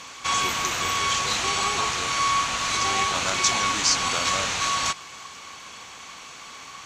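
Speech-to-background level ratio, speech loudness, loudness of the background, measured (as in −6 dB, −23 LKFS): −6.0 dB, −29.5 LKFS, −23.5 LKFS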